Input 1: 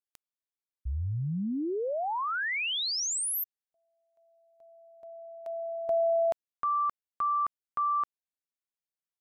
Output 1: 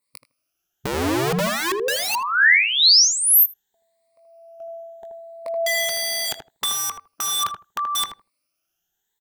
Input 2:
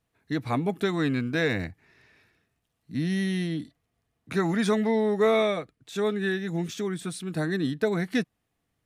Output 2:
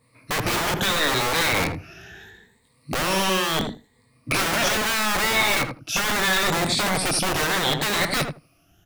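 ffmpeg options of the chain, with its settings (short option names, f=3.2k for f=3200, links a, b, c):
-filter_complex "[0:a]afftfilt=real='re*pow(10,17/40*sin(2*PI*(0.97*log(max(b,1)*sr/1024/100)/log(2)-(0.74)*(pts-256)/sr)))':imag='im*pow(10,17/40*sin(2*PI*(0.97*log(max(b,1)*sr/1024/100)/log(2)-(0.74)*(pts-256)/sr)))':win_size=1024:overlap=0.75,adynamicequalizer=threshold=0.00891:dfrequency=4400:dqfactor=1.2:tfrequency=4400:tqfactor=1.2:attack=5:release=100:ratio=0.438:range=2:mode=boostabove:tftype=bell,asplit=2[a][b];[b]acompressor=threshold=-31dB:ratio=4:attack=0.17:release=42:knee=6:detection=peak,volume=1dB[c];[a][c]amix=inputs=2:normalize=0,alimiter=limit=-17dB:level=0:latency=1:release=21,acrossover=split=1500[d][e];[d]aeval=exprs='(mod(17.8*val(0)+1,2)-1)/17.8':c=same[f];[e]asplit=2[g][h];[h]adelay=20,volume=-3dB[i];[g][i]amix=inputs=2:normalize=0[j];[f][j]amix=inputs=2:normalize=0,asplit=2[k][l];[l]adelay=79,lowpass=f=1k:p=1,volume=-4dB,asplit=2[m][n];[n]adelay=79,lowpass=f=1k:p=1,volume=0.16,asplit=2[o][p];[p]adelay=79,lowpass=f=1k:p=1,volume=0.16[q];[k][m][o][q]amix=inputs=4:normalize=0,volume=6dB"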